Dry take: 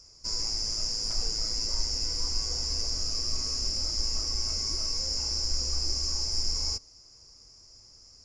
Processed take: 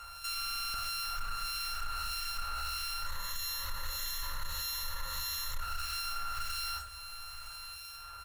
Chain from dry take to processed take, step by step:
samples sorted by size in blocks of 32 samples
sine wavefolder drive 9 dB, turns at −14.5 dBFS
0:03.06–0:05.60: EQ curve with evenly spaced ripples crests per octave 1.1, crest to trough 17 dB
two-band tremolo in antiphase 1.6 Hz, depth 70%, crossover 2,000 Hz
high-pass filter 53 Hz 6 dB per octave
guitar amp tone stack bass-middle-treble 10-0-10
single-tap delay 961 ms −19 dB
convolution reverb RT60 0.50 s, pre-delay 6 ms, DRR −3 dB
soft clipping −15.5 dBFS, distortion −19 dB
downward compressor 2 to 1, threshold −44 dBFS, peak gain reduction 13.5 dB
buffer that repeats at 0:00.37, samples 2,048, times 7
highs frequency-modulated by the lows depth 0.18 ms

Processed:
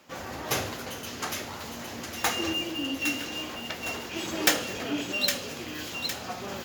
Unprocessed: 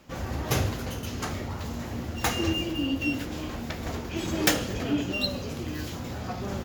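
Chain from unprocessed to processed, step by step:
high-pass filter 510 Hz 6 dB per octave
delay with a high-pass on its return 810 ms, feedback 45%, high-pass 1,800 Hz, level −5 dB
level +1.5 dB

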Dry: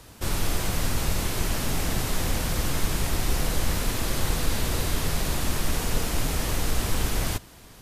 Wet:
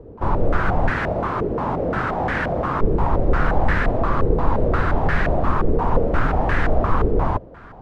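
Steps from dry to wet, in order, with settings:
0:00.90–0:02.81: high-pass filter 150 Hz 6 dB per octave
low-pass on a step sequencer 5.7 Hz 450–1,700 Hz
level +6.5 dB

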